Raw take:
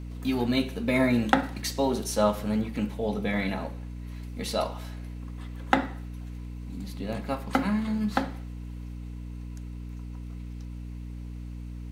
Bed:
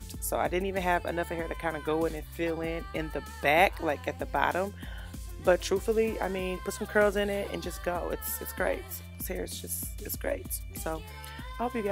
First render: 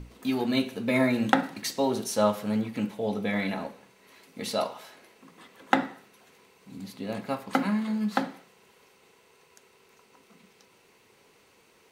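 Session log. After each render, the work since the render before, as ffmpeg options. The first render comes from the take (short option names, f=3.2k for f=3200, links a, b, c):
-af "bandreject=f=60:t=h:w=6,bandreject=f=120:t=h:w=6,bandreject=f=180:t=h:w=6,bandreject=f=240:t=h:w=6,bandreject=f=300:t=h:w=6"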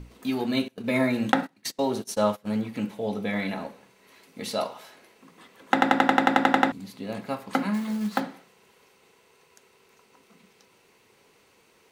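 -filter_complex "[0:a]asettb=1/sr,asplit=3[a][b][c];[a]atrim=end=0.684[d];[b]atrim=start=0.68:end=2.49,asetpts=PTS-STARTPTS,afade=t=in:d=0.004:c=qsin,afade=t=out:st=1.806:d=0.004:c=qsin,agate=range=-22dB:threshold=-34dB:ratio=16:release=100:detection=peak[e];[c]atrim=start=2.486[f];[d][e]acrossfade=d=0.004:c1=hsin:c2=qsin[g];[g][f]acrossfade=d=0.004:c1=qsin:c2=hsin,asplit=3[h][i][j];[h]afade=t=out:st=7.73:d=0.02[k];[i]acrusher=bits=5:mode=log:mix=0:aa=0.000001,afade=t=in:st=7.73:d=0.02,afade=t=out:st=8.19:d=0.02[l];[j]afade=t=in:st=8.19:d=0.02[m];[k][l][m]amix=inputs=3:normalize=0,asplit=12[n][o][p][q][r][s][t][u][v][w][x][y];[n]atrim=end=5.822[z];[o]atrim=start=5.728:end=5.822[aa];[p]atrim=start=5.728:end=5.822[ab];[q]atrim=start=5.728:end=5.822[ac];[r]atrim=start=5.728:end=5.822[ad];[s]atrim=start=5.728:end=5.822[ae];[t]atrim=start=5.728:end=5.822[af];[u]atrim=start=5.728:end=5.822[ag];[v]atrim=start=5.728:end=5.822[ah];[w]atrim=start=5.728:end=5.822[ai];[x]atrim=start=5.728:end=5.822[aj];[y]atrim=start=6.718[ak];[z][aa]acrossfade=d=0.004:c1=hsin:c2=hsin[al];[al][ab]acrossfade=d=0.004:c1=hsin:c2=hsin[am];[am][ac]acrossfade=d=0.004:c1=hsin:c2=hsin[an];[an][ad]acrossfade=d=0.004:c1=hsin:c2=hsin[ao];[ao][ae]acrossfade=d=0.004:c1=hsin:c2=hsin[ap];[ap][af]acrossfade=d=0.004:c1=hsin:c2=hsin[aq];[aq][ag]acrossfade=d=0.004:c1=hsin:c2=hsin[ar];[ar][ah]acrossfade=d=0.004:c1=hsin:c2=hsin[as];[as][ai]acrossfade=d=0.004:c1=hsin:c2=hsin[at];[at][aj]acrossfade=d=0.004:c1=hsin:c2=hsin[au];[au][ak]acrossfade=d=0.004:c1=hsin:c2=hsin"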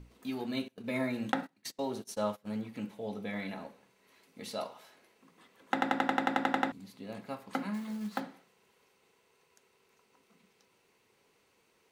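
-af "volume=-9.5dB"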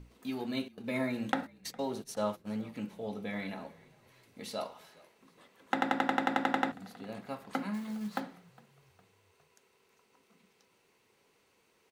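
-filter_complex "[0:a]asplit=4[a][b][c][d];[b]adelay=409,afreqshift=-39,volume=-24dB[e];[c]adelay=818,afreqshift=-78,volume=-30.2dB[f];[d]adelay=1227,afreqshift=-117,volume=-36.4dB[g];[a][e][f][g]amix=inputs=4:normalize=0"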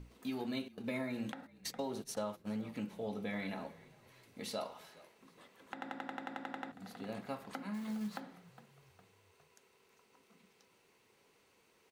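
-af "acompressor=threshold=-35dB:ratio=6,alimiter=level_in=1.5dB:limit=-24dB:level=0:latency=1:release=324,volume=-1.5dB"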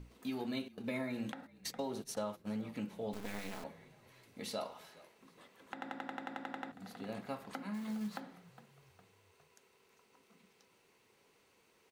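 -filter_complex "[0:a]asettb=1/sr,asplit=3[a][b][c];[a]atrim=end=3.134[d];[b]atrim=start=3.13:end=3.64,asetpts=PTS-STARTPTS,afade=t=in:d=0.004:c=qsin,afade=t=out:st=0.506:d=0.004:c=qsin,acrusher=bits=5:dc=4:mix=0:aa=0.000001[e];[c]atrim=start=3.636[f];[d][e]acrossfade=d=0.004:c1=hsin:c2=qsin[g];[g][f]acrossfade=d=0.004:c1=qsin:c2=hsin"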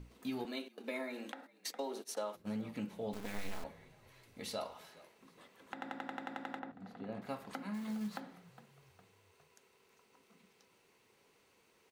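-filter_complex "[0:a]asettb=1/sr,asplit=3[a][b][c];[a]atrim=end=0.454[d];[b]atrim=start=0.45:end=2.35,asetpts=PTS-STARTPTS,afade=t=in:d=0.004:c=qsin,afade=t=out:st=1.896:d=0.004:c=qsin,highpass=f=290:w=0.5412,highpass=f=290:w=1.3066[e];[c]atrim=start=2.346[f];[d][e]acrossfade=d=0.004:c1=hsin:c2=qsin[g];[g][f]acrossfade=d=0.004:c1=qsin:c2=hsin,asplit=3[h][i][j];[h]afade=t=out:st=3.36:d=0.02[k];[i]asubboost=boost=4.5:cutoff=81,afade=t=in:st=3.36:d=0.02,afade=t=out:st=4.76:d=0.02[l];[j]afade=t=in:st=4.76:d=0.02[m];[k][l][m]amix=inputs=3:normalize=0,asettb=1/sr,asplit=3[n][o][p];[n]atrim=end=6.594[q];[o]atrim=start=6.59:end=7.22,asetpts=PTS-STARTPTS,afade=t=in:d=0.004:c=qsin,afade=t=out:st=0.626:d=0.004:c=qsin,lowpass=f=1.3k:p=1[r];[p]atrim=start=7.216[s];[q][r]acrossfade=d=0.004:c1=hsin:c2=qsin[t];[t][s]acrossfade=d=0.004:c1=qsin:c2=hsin"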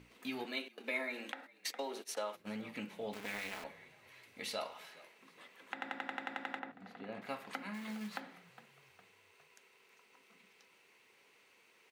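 -af "highpass=f=280:p=1,equalizer=f=2.3k:t=o:w=1.2:g=8"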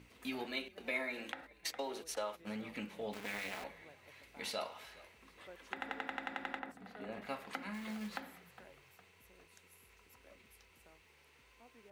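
-filter_complex "[1:a]volume=-31dB[a];[0:a][a]amix=inputs=2:normalize=0"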